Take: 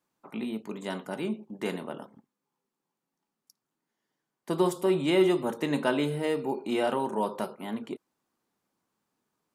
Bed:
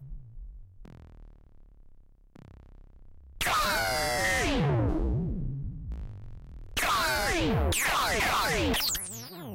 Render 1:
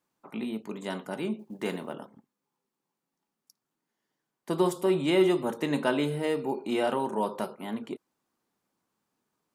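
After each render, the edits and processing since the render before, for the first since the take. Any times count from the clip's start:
0:01.39–0:01.94: log-companded quantiser 8 bits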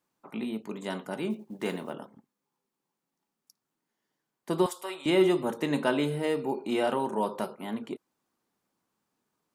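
0:01.30–0:01.91: one scale factor per block 7 bits
0:04.66–0:05.06: high-pass filter 930 Hz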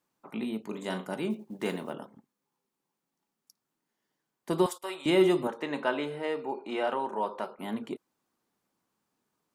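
0:00.68–0:01.14: double-tracking delay 38 ms −8.5 dB
0:04.52–0:04.97: noise gate −47 dBFS, range −22 dB
0:05.47–0:07.59: resonant band-pass 1,200 Hz, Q 0.5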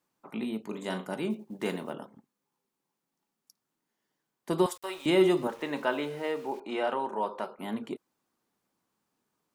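0:04.75–0:06.60: centre clipping without the shift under −48.5 dBFS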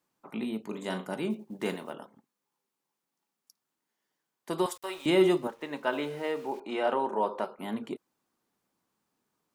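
0:01.74–0:04.68: low-shelf EQ 360 Hz −7.5 dB
0:05.34–0:05.93: expander for the loud parts, over −45 dBFS
0:06.85–0:07.45: parametric band 400 Hz +4 dB 2.3 octaves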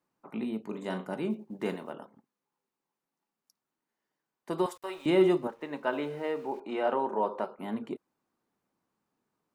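high-shelf EQ 2,800 Hz −9 dB
notch filter 3,300 Hz, Q 25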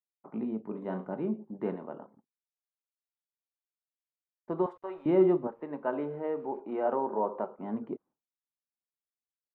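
low-pass filter 1,100 Hz 12 dB per octave
downward expander −54 dBFS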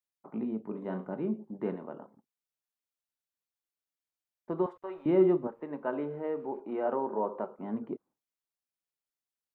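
dynamic equaliser 780 Hz, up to −3 dB, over −44 dBFS, Q 1.6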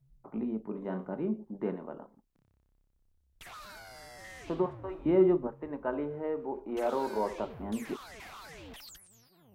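mix in bed −21 dB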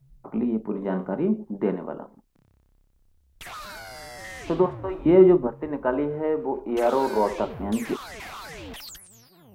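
level +9 dB

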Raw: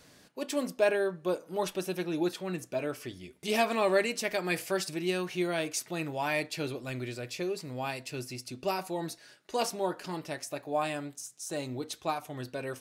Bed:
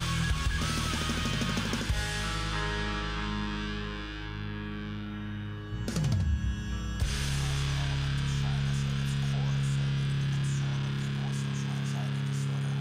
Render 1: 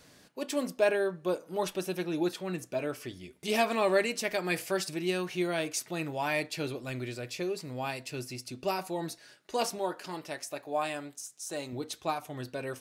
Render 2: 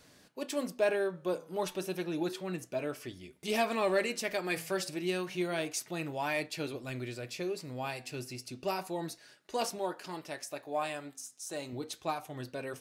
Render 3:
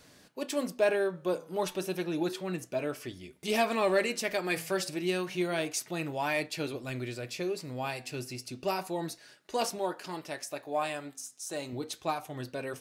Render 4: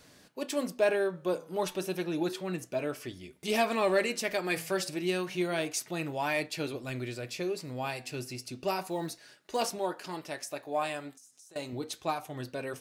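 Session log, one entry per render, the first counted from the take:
0:09.78–0:11.73: low-shelf EQ 210 Hz −9.5 dB
flanger 0.31 Hz, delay 2.8 ms, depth 7.2 ms, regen −89%; in parallel at −11 dB: hard clipping −29 dBFS, distortion −14 dB
level +2.5 dB
0:08.86–0:09.62: floating-point word with a short mantissa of 4 bits; 0:11.13–0:11.56: downward compressor 8 to 1, threshold −53 dBFS

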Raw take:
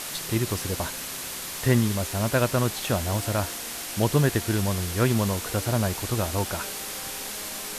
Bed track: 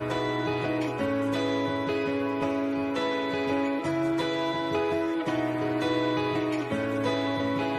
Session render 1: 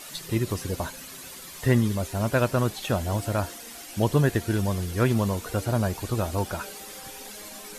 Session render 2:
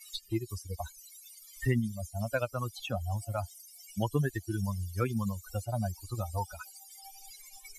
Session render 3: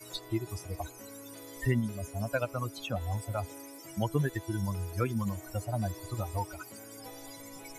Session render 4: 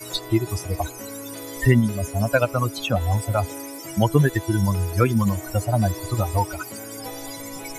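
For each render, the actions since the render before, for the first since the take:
broadband denoise 11 dB, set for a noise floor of −35 dBFS
spectral dynamics exaggerated over time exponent 3; multiband upward and downward compressor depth 70%
mix in bed track −21.5 dB
level +12 dB

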